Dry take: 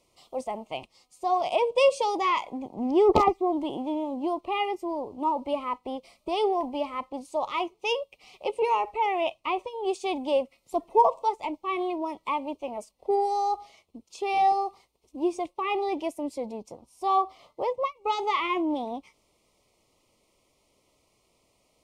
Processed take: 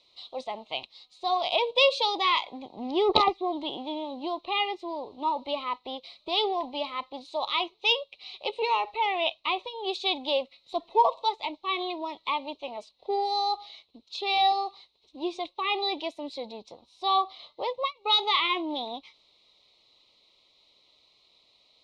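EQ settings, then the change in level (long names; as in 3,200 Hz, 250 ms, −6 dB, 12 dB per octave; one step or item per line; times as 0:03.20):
low-pass with resonance 3,900 Hz, resonance Q 13
low-shelf EQ 410 Hz −9.5 dB
0.0 dB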